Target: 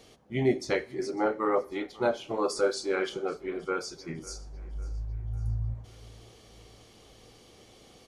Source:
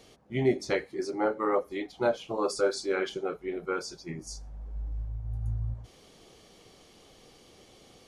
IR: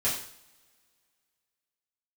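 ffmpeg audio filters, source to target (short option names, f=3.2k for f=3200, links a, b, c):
-filter_complex "[0:a]aecho=1:1:550|1100|1650|2200:0.0891|0.0446|0.0223|0.0111,asplit=2[a][b];[1:a]atrim=start_sample=2205[c];[b][c]afir=irnorm=-1:irlink=0,volume=-25dB[d];[a][d]amix=inputs=2:normalize=0"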